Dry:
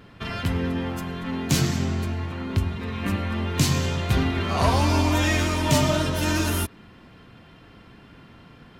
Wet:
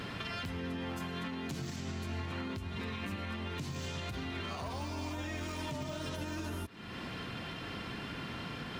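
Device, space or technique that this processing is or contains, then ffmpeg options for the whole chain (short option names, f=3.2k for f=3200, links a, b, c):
broadcast voice chain: -af "highpass=f=74:p=1,deesser=0.85,acompressor=threshold=-44dB:ratio=3,equalizer=f=4.8k:t=o:w=3:g=5.5,alimiter=level_in=13dB:limit=-24dB:level=0:latency=1:release=161,volume=-13dB,volume=7dB"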